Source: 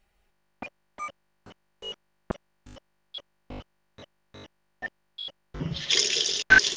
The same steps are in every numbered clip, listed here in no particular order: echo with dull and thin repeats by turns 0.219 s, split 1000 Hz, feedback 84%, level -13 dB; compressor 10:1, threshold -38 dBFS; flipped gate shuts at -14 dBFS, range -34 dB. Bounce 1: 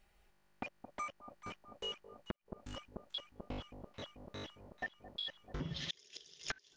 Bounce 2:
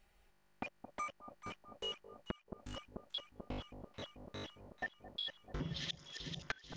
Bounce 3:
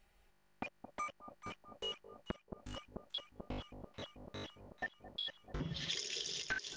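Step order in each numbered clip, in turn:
echo with dull and thin repeats by turns > flipped gate > compressor; flipped gate > echo with dull and thin repeats by turns > compressor; echo with dull and thin repeats by turns > compressor > flipped gate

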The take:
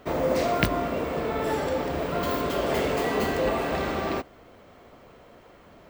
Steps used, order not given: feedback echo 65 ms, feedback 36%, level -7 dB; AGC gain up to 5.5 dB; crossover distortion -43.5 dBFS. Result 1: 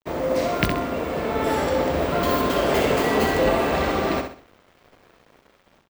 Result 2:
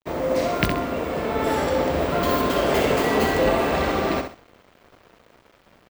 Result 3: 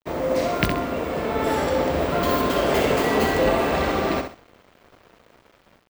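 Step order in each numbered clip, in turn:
AGC > crossover distortion > feedback echo; feedback echo > AGC > crossover distortion; AGC > feedback echo > crossover distortion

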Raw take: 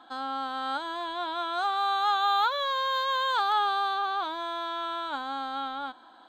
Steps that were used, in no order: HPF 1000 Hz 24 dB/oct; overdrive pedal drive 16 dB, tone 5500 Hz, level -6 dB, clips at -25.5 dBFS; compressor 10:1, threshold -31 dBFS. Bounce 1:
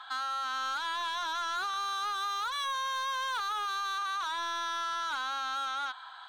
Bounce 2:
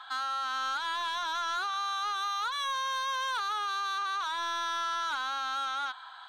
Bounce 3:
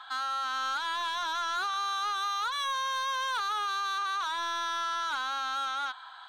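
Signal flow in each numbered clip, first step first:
HPF > overdrive pedal > compressor; compressor > HPF > overdrive pedal; HPF > compressor > overdrive pedal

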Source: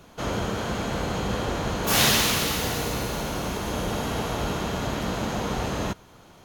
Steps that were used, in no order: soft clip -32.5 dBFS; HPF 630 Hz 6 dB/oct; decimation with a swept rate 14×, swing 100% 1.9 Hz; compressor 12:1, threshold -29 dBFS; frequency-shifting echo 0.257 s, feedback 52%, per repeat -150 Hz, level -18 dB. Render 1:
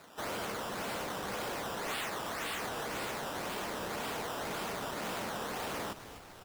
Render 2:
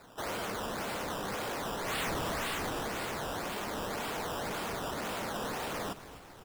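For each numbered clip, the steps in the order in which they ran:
decimation with a swept rate > HPF > frequency-shifting echo > compressor > soft clip; HPF > decimation with a swept rate > frequency-shifting echo > soft clip > compressor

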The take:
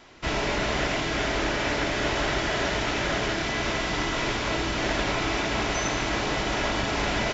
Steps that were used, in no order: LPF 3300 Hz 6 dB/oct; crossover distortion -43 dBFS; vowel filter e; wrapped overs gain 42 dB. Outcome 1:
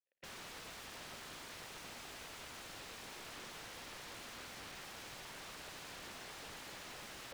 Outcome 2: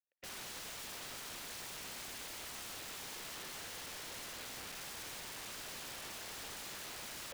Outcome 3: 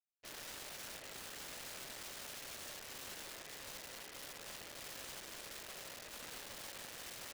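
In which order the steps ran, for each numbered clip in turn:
crossover distortion > vowel filter > wrapped overs > LPF; LPF > crossover distortion > vowel filter > wrapped overs; vowel filter > crossover distortion > LPF > wrapped overs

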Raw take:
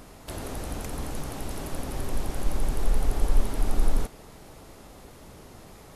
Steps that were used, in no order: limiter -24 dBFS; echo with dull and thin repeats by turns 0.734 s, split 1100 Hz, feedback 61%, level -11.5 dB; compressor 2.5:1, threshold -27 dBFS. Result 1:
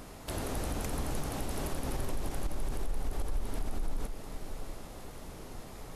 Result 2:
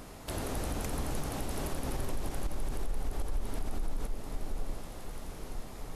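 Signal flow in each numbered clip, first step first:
compressor > echo with dull and thin repeats by turns > limiter; echo with dull and thin repeats by turns > compressor > limiter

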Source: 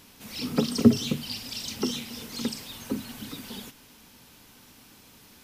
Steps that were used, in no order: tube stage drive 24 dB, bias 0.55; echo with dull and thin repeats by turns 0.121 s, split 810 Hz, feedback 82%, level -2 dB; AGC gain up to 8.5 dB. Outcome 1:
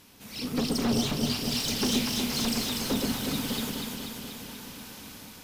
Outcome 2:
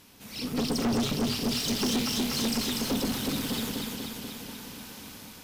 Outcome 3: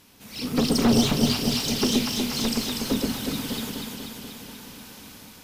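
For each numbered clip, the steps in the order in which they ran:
AGC > tube stage > echo with dull and thin repeats by turns; AGC > echo with dull and thin repeats by turns > tube stage; tube stage > AGC > echo with dull and thin repeats by turns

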